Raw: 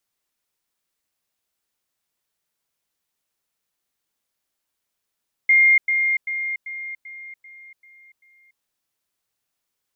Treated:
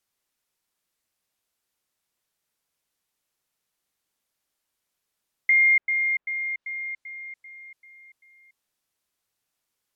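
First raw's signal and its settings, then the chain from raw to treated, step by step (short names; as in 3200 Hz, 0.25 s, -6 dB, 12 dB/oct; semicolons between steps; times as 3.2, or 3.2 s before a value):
level ladder 2120 Hz -11 dBFS, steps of -6 dB, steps 8, 0.29 s 0.10 s
treble ducked by the level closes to 2000 Hz, closed at -23.5 dBFS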